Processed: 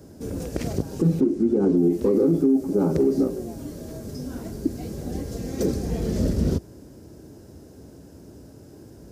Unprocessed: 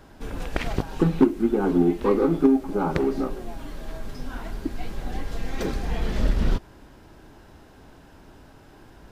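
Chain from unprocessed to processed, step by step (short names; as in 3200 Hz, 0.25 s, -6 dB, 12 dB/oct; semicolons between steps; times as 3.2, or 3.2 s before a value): HPF 66 Hz 24 dB/oct; band shelf 1700 Hz -15.5 dB 2.7 oct; limiter -18 dBFS, peak gain reduction 11 dB; 1.2–1.77 air absorption 60 m; gain +6.5 dB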